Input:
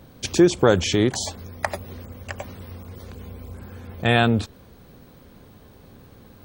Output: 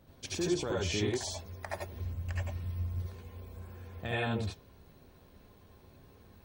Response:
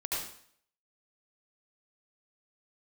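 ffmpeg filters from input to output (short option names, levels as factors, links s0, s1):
-filter_complex "[0:a]flanger=delay=1.5:depth=5.8:regen=87:speed=0.75:shape=sinusoidal,alimiter=limit=0.168:level=0:latency=1:release=65,asplit=3[s0][s1][s2];[s0]afade=t=out:st=1.92:d=0.02[s3];[s1]asubboost=boost=6:cutoff=190,afade=t=in:st=1.92:d=0.02,afade=t=out:st=3:d=0.02[s4];[s2]afade=t=in:st=3:d=0.02[s5];[s3][s4][s5]amix=inputs=3:normalize=0[s6];[1:a]atrim=start_sample=2205,atrim=end_sample=3969[s7];[s6][s7]afir=irnorm=-1:irlink=0,volume=0.473"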